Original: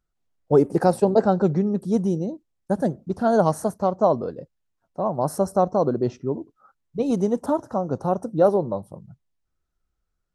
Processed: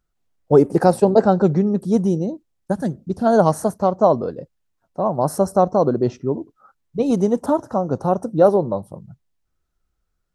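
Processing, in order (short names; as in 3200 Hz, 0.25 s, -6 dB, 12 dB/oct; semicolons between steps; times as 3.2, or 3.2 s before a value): 2.71–3.25 bell 410 Hz -> 1400 Hz -9.5 dB 1.7 oct; gain +4 dB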